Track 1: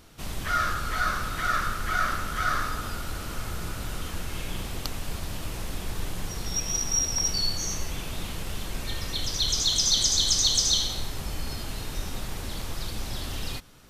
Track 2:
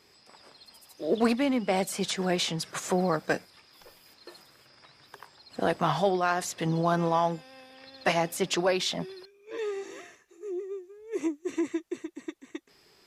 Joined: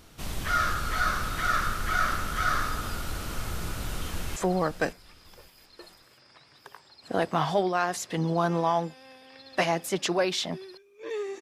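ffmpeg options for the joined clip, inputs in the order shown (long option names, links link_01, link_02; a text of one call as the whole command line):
ffmpeg -i cue0.wav -i cue1.wav -filter_complex "[0:a]apad=whole_dur=11.41,atrim=end=11.41,atrim=end=4.362[link_01];[1:a]atrim=start=2.838:end=9.89[link_02];[link_01][link_02]acrossfade=duration=0.004:curve1=hsin:curve2=hsin,asplit=2[link_03][link_04];[link_04]afade=type=in:start_time=3.85:duration=0.01,afade=type=out:start_time=4.36:duration=0.01,aecho=0:1:560|1120|1680:0.237137|0.0711412|0.0213424[link_05];[link_03][link_05]amix=inputs=2:normalize=0" out.wav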